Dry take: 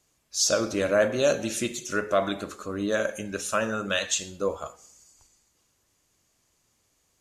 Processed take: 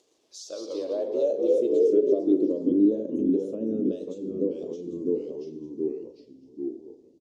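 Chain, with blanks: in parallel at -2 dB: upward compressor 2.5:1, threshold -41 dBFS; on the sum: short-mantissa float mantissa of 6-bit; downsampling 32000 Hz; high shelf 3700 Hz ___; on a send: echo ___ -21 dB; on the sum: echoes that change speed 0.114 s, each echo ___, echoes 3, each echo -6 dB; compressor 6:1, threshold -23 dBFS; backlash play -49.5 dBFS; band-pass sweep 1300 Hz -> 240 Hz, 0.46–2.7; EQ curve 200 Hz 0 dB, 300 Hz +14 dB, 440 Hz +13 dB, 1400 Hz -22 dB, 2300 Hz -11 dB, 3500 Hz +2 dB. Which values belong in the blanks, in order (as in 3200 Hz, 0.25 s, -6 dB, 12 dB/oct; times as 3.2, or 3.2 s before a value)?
+7 dB, 0.791 s, -2 st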